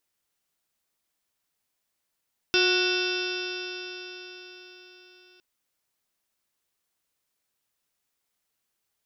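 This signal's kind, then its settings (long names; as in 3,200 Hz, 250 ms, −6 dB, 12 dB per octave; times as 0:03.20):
stiff-string partials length 2.86 s, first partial 362 Hz, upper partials −14/−17/−3.5/−18.5/−17.5/−1/−11.5/−3.5/−14/−13.5/−5.5/−6 dB, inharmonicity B 0.0023, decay 4.62 s, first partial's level −23 dB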